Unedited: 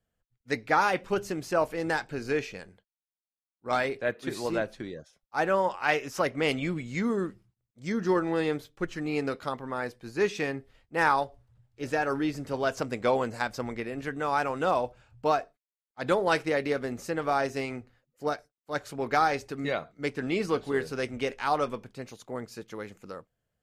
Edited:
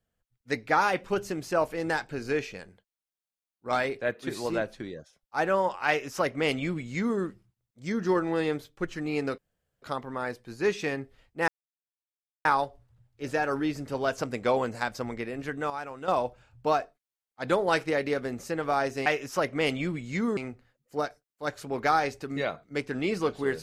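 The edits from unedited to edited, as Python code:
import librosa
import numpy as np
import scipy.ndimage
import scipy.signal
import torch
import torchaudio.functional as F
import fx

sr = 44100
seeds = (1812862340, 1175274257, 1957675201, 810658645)

y = fx.edit(x, sr, fx.duplicate(start_s=5.88, length_s=1.31, to_s=17.65),
    fx.insert_room_tone(at_s=9.38, length_s=0.44),
    fx.insert_silence(at_s=11.04, length_s=0.97),
    fx.clip_gain(start_s=14.29, length_s=0.38, db=-9.5), tone=tone)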